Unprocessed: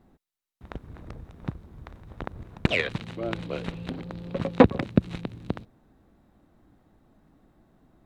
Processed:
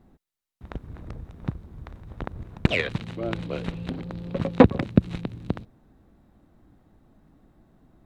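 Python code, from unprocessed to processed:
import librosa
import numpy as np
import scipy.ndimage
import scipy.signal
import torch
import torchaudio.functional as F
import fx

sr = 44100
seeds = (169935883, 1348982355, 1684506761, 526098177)

y = fx.low_shelf(x, sr, hz=240.0, db=4.5)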